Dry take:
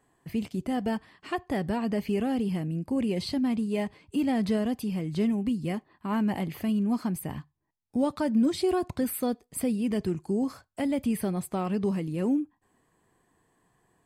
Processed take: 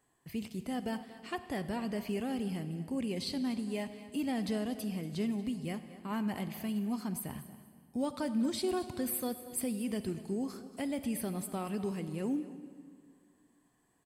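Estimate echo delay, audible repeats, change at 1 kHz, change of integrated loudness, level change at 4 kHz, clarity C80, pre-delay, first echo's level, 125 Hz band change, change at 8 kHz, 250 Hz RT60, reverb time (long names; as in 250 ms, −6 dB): 235 ms, 2, −7.0 dB, −7.0 dB, −2.5 dB, 11.5 dB, 36 ms, −16.0 dB, −7.5 dB, −0.5 dB, 2.3 s, 2.0 s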